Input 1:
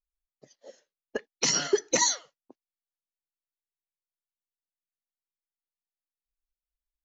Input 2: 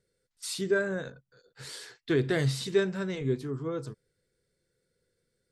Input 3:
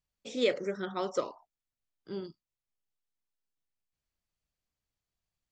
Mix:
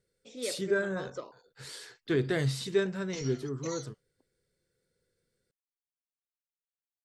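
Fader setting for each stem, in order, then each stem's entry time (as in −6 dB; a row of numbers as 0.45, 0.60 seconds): −19.5, −2.0, −9.0 decibels; 1.70, 0.00, 0.00 seconds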